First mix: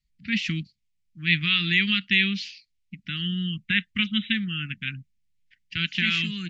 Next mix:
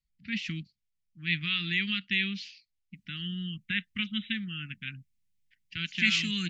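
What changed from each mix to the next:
first voice -7.5 dB; second voice: remove low-pass 2.6 kHz 6 dB/octave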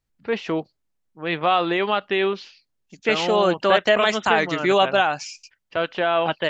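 second voice: entry -2.95 s; master: remove elliptic band-stop 210–2100 Hz, stop band 60 dB

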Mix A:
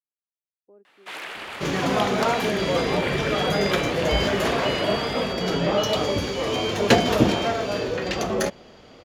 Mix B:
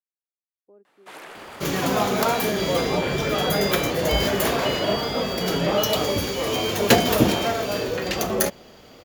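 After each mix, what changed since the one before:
first sound: add peaking EQ 2.8 kHz -10 dB 2.1 oct; second sound: remove distance through air 68 m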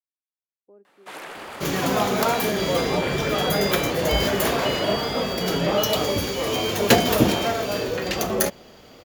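reverb: on, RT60 0.85 s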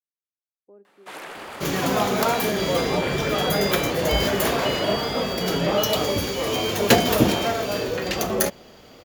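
speech: send +8.0 dB

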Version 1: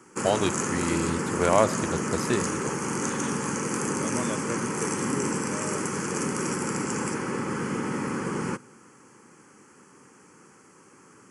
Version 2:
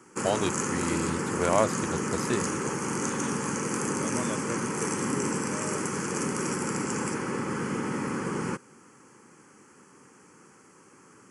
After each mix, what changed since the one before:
reverb: off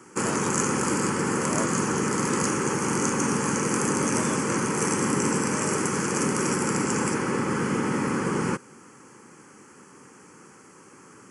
first voice -11.0 dB; background +5.0 dB

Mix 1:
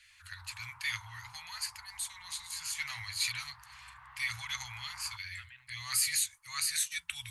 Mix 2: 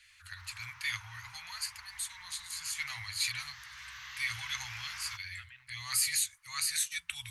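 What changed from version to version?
background: remove resonant low-pass 900 Hz, resonance Q 1.9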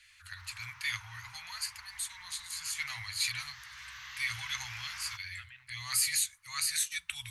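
reverb: on, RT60 0.35 s

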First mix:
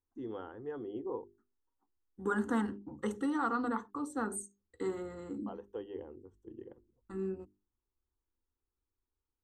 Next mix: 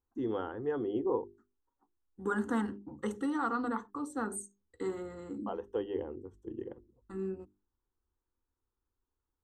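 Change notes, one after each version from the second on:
first voice +7.5 dB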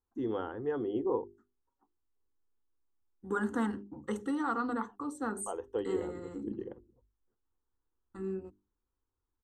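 second voice: entry +1.05 s

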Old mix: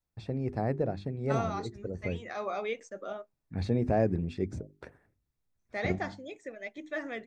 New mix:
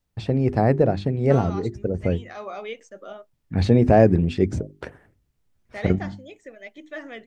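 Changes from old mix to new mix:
first voice +12.0 dB; master: remove band-stop 3 kHz, Q 7.4

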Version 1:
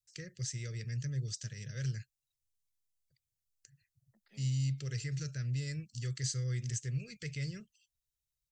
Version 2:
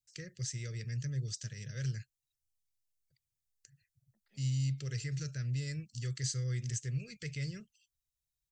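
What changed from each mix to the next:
second voice -7.5 dB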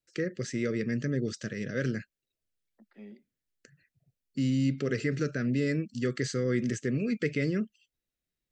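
second voice: entry -1.35 s; master: remove FFT filter 130 Hz 0 dB, 250 Hz -28 dB, 370 Hz -21 dB, 1.4 kHz -16 dB, 6.3 kHz +3 dB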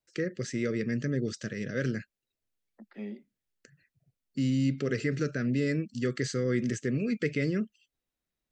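second voice +8.5 dB

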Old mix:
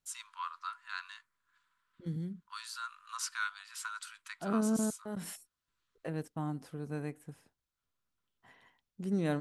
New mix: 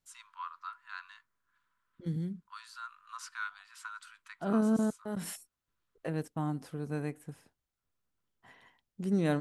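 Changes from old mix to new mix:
first voice: add treble shelf 2.8 kHz -11.5 dB; second voice +3.0 dB

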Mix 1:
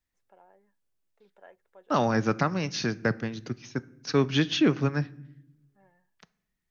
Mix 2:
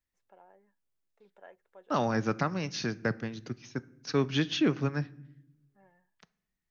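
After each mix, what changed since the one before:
second voice -4.0 dB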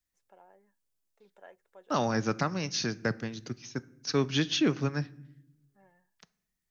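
master: add tone controls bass 0 dB, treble +8 dB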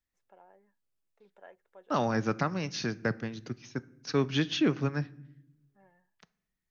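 master: add tone controls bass 0 dB, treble -8 dB

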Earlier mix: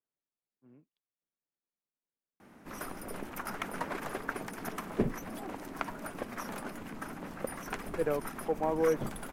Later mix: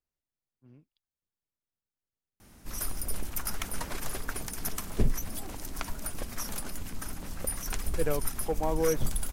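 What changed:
background -4.0 dB; master: remove three-band isolator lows -22 dB, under 160 Hz, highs -17 dB, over 2.4 kHz

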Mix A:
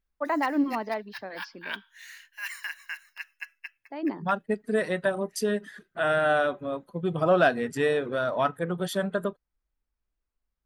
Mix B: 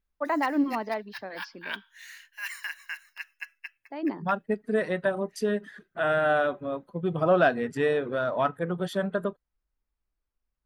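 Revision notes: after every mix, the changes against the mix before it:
second voice: add treble shelf 5 kHz -11 dB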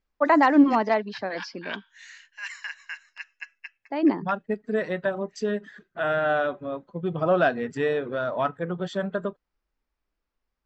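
first voice +8.5 dB; master: add brick-wall FIR low-pass 8.1 kHz

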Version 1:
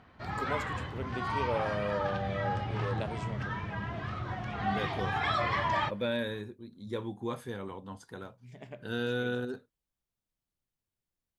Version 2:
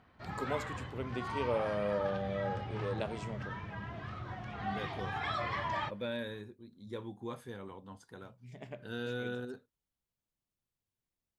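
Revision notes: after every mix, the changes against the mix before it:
second voice -6.0 dB; background -6.0 dB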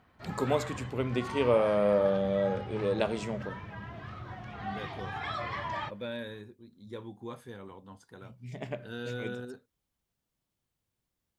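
first voice +8.5 dB

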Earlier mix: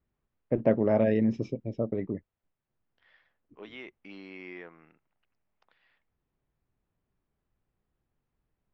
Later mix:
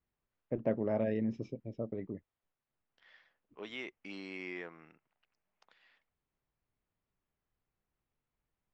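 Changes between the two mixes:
first voice -8.5 dB; second voice: remove distance through air 160 m

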